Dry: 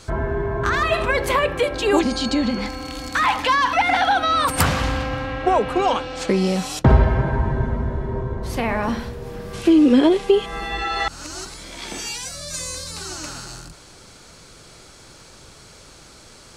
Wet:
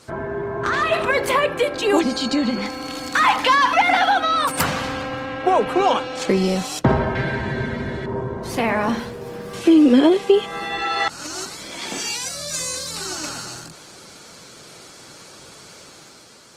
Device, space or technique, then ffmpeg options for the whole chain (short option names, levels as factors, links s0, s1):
video call: -filter_complex "[0:a]asettb=1/sr,asplit=3[s0][s1][s2];[s0]atrim=end=7.154[s3];[s1]atrim=start=7.15:end=8.06,asetpts=PTS-STARTPTS,afade=t=in:d=0.004:c=qsin,afade=t=out:st=0.906:d=0.004:c=qsin,equalizer=f=1000:t=o:w=1:g=-7,equalizer=f=2000:t=o:w=1:g=9,equalizer=f=4000:t=o:w=1:g=12,equalizer=f=8000:t=o:w=1:g=6[s4];[s2]atrim=start=8.056[s5];[s3][s4]acrossfade=d=0.004:c1=hsin:c2=qsin[s6];[s6][s5]acrossfade=d=0.004:c1=qsin:c2=hsin,highpass=150,dynaudnorm=f=200:g=7:m=1.78,volume=0.841" -ar 48000 -c:a libopus -b:a 20k